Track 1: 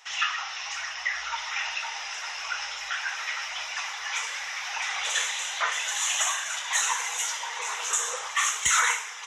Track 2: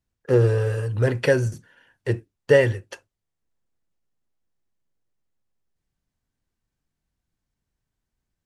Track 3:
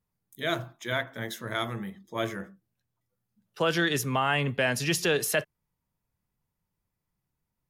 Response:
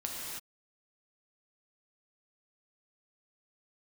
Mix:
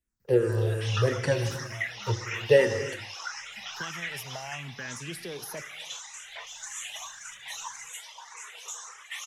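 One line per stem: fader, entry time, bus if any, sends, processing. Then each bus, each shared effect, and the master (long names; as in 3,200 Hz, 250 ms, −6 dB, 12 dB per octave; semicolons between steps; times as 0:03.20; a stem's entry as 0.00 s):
0:04.16 −3.5 dB → 0:04.81 −10 dB, 0.75 s, send −22 dB, reverb reduction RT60 0.55 s; frequency shifter mixed with the dry sound +1.8 Hz
−6.0 dB, 0.00 s, send −6 dB, frequency shifter mixed with the dry sound −2.7 Hz
−11.0 dB, 0.20 s, send −17 dB, all-pass phaser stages 6, 0.43 Hz, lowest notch 290–2,400 Hz; multiband upward and downward compressor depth 70%; automatic ducking −6 dB, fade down 0.30 s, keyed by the second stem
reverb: on, pre-delay 3 ms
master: high-shelf EQ 6,200 Hz +5.5 dB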